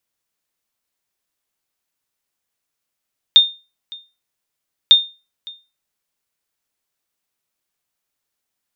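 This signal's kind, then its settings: sonar ping 3640 Hz, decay 0.29 s, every 1.55 s, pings 2, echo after 0.56 s, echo -24.5 dB -1 dBFS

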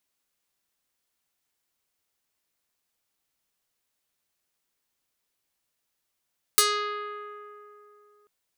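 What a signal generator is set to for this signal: plucked string G#4, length 1.69 s, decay 3.09 s, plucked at 0.48, medium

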